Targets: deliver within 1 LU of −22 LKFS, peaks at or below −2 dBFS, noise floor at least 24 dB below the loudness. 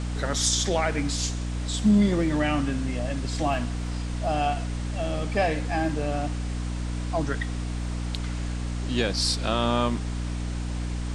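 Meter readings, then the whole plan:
mains hum 60 Hz; hum harmonics up to 300 Hz; level of the hum −27 dBFS; background noise floor −30 dBFS; target noise floor −51 dBFS; integrated loudness −27.0 LKFS; sample peak −10.0 dBFS; target loudness −22.0 LKFS
→ hum removal 60 Hz, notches 5
noise reduction from a noise print 21 dB
level +5 dB

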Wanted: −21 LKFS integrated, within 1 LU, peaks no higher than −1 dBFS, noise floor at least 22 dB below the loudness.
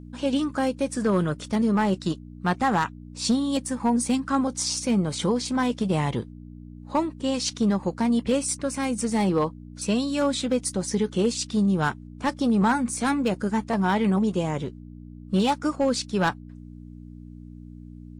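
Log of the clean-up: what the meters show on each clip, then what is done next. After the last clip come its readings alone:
share of clipped samples 0.6%; peaks flattened at −15.0 dBFS; mains hum 60 Hz; hum harmonics up to 300 Hz; level of the hum −41 dBFS; integrated loudness −25.0 LKFS; sample peak −15.0 dBFS; target loudness −21.0 LKFS
→ clipped peaks rebuilt −15 dBFS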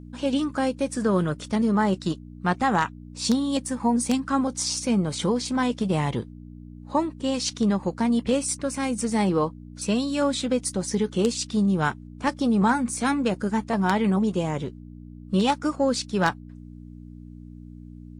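share of clipped samples 0.0%; mains hum 60 Hz; hum harmonics up to 300 Hz; level of the hum −41 dBFS
→ hum removal 60 Hz, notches 5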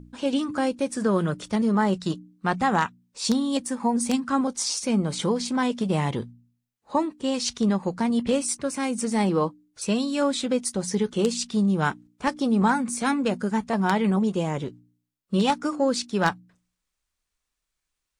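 mains hum none found; integrated loudness −25.0 LKFS; sample peak −6.0 dBFS; target loudness −21.0 LKFS
→ level +4 dB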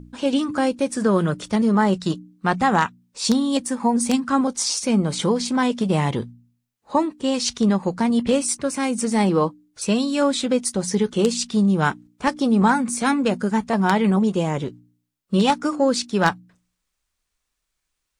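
integrated loudness −21.0 LKFS; sample peak −2.0 dBFS; background noise floor −78 dBFS

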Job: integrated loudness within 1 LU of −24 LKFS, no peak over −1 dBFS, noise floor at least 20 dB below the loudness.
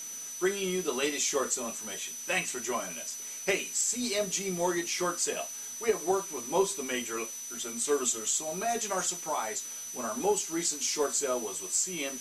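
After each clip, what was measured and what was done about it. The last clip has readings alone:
interfering tone 6,000 Hz; level of the tone −39 dBFS; background noise floor −41 dBFS; target noise floor −51 dBFS; integrated loudness −30.5 LKFS; sample peak −14.0 dBFS; target loudness −24.0 LKFS
→ notch filter 6,000 Hz, Q 30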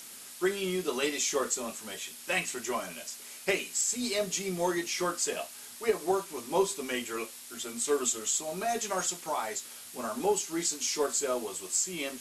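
interfering tone none found; background noise floor −47 dBFS; target noise floor −51 dBFS
→ broadband denoise 6 dB, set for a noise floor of −47 dBFS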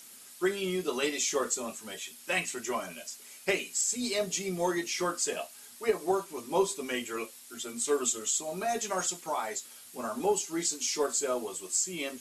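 background noise floor −51 dBFS; integrated loudness −31.0 LKFS; sample peak −14.5 dBFS; target loudness −24.0 LKFS
→ level +7 dB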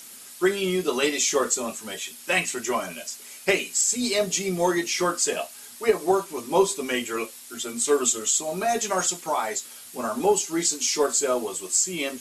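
integrated loudness −24.0 LKFS; sample peak −7.5 dBFS; background noise floor −44 dBFS

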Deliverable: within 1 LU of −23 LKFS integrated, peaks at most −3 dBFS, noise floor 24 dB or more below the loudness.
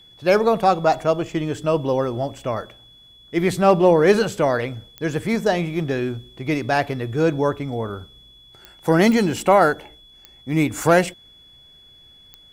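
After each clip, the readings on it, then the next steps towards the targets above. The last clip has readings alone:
number of clicks 6; interfering tone 3,400 Hz; level of the tone −47 dBFS; integrated loudness −20.0 LKFS; sample peak −4.0 dBFS; target loudness −23.0 LKFS
→ click removal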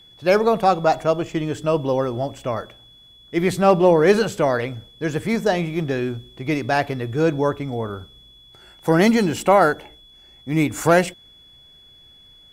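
number of clicks 0; interfering tone 3,400 Hz; level of the tone −47 dBFS
→ notch filter 3,400 Hz, Q 30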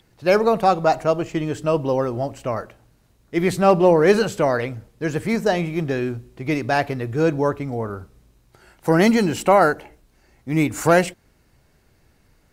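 interfering tone none found; integrated loudness −20.0 LKFS; sample peak −4.0 dBFS; target loudness −23.0 LKFS
→ level −3 dB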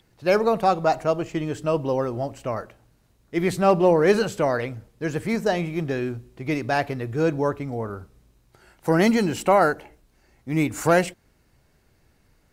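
integrated loudness −23.0 LKFS; sample peak −7.0 dBFS; background noise floor −63 dBFS

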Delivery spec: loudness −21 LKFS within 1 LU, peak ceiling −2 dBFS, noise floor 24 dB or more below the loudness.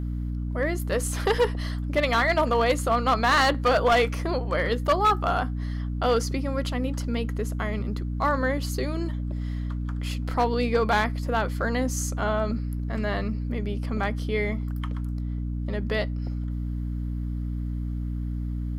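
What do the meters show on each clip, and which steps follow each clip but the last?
share of clipped samples 0.8%; peaks flattened at −15.0 dBFS; mains hum 60 Hz; hum harmonics up to 300 Hz; level of the hum −27 dBFS; integrated loudness −26.5 LKFS; sample peak −15.0 dBFS; target loudness −21.0 LKFS
→ clipped peaks rebuilt −15 dBFS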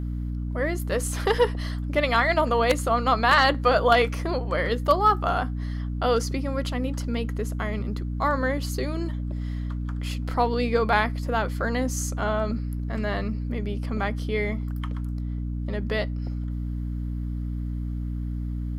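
share of clipped samples 0.0%; mains hum 60 Hz; hum harmonics up to 300 Hz; level of the hum −27 dBFS
→ mains-hum notches 60/120/180/240/300 Hz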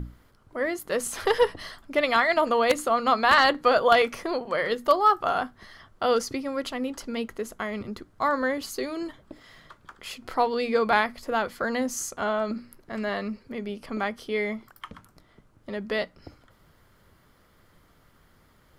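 mains hum none found; integrated loudness −25.5 LKFS; sample peak −5.5 dBFS; target loudness −21.0 LKFS
→ level +4.5 dB
brickwall limiter −2 dBFS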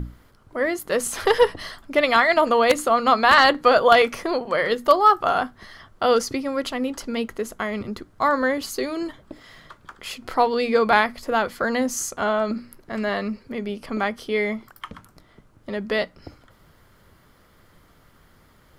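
integrated loudness −21.0 LKFS; sample peak −2.0 dBFS; background noise floor −56 dBFS

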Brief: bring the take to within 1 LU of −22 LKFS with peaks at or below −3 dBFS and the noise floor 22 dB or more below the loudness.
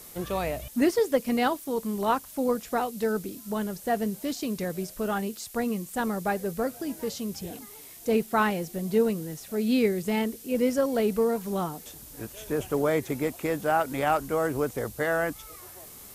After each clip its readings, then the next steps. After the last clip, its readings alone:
background noise floor −46 dBFS; target noise floor −50 dBFS; integrated loudness −28.0 LKFS; sample peak −12.0 dBFS; target loudness −22.0 LKFS
→ noise reduction from a noise print 6 dB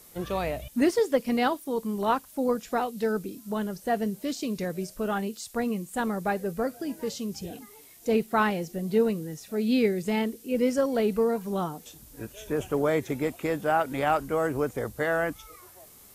background noise floor −52 dBFS; integrated loudness −28.0 LKFS; sample peak −12.0 dBFS; target loudness −22.0 LKFS
→ level +6 dB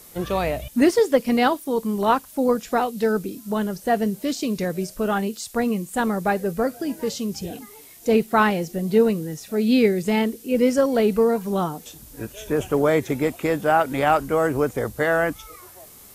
integrated loudness −22.0 LKFS; sample peak −6.0 dBFS; background noise floor −46 dBFS

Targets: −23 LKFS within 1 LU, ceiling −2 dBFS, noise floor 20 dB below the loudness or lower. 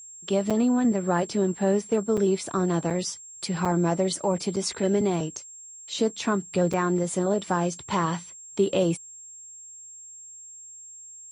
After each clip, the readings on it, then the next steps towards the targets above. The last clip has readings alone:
number of dropouts 6; longest dropout 5.8 ms; interfering tone 7,500 Hz; level of the tone −42 dBFS; integrated loudness −26.0 LKFS; sample peak −11.0 dBFS; target loudness −23.0 LKFS
→ repair the gap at 0:00.50/0:02.17/0:02.90/0:03.65/0:04.56/0:06.73, 5.8 ms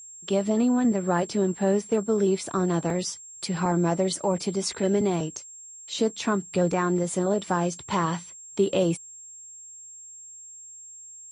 number of dropouts 0; interfering tone 7,500 Hz; level of the tone −42 dBFS
→ notch filter 7,500 Hz, Q 30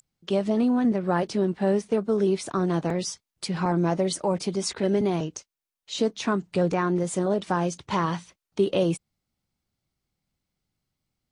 interfering tone none found; integrated loudness −26.0 LKFS; sample peak −11.0 dBFS; target loudness −23.0 LKFS
→ level +3 dB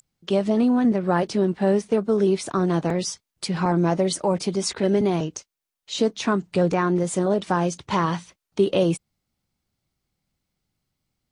integrated loudness −23.0 LKFS; sample peak −8.0 dBFS; background noise floor −84 dBFS

